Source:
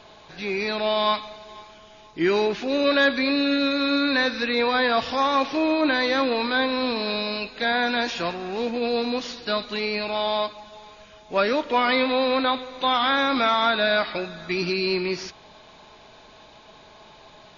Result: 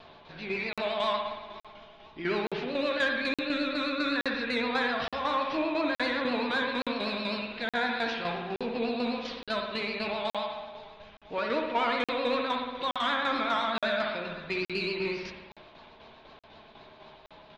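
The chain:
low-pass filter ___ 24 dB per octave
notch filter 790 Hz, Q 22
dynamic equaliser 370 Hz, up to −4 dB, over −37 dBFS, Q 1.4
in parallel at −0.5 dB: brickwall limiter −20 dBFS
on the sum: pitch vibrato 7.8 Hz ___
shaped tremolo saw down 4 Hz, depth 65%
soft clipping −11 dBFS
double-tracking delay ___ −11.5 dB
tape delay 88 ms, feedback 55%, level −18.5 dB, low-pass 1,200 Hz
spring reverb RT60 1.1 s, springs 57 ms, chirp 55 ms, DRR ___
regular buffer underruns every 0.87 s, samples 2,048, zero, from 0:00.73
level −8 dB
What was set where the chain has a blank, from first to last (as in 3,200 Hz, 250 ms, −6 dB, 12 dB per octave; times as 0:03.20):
4,300 Hz, 89 cents, 13 ms, 2.5 dB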